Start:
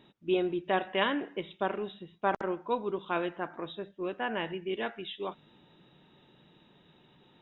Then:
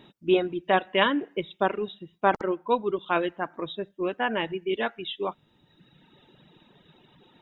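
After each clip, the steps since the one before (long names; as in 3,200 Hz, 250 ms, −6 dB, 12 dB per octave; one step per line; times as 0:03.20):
reverb reduction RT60 1.4 s
level +7 dB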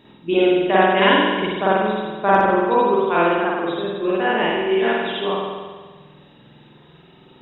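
spring reverb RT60 1.5 s, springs 47 ms, chirp 50 ms, DRR −8.5 dB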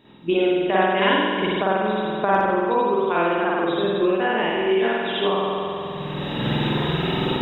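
camcorder AGC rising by 22 dB per second
level −4 dB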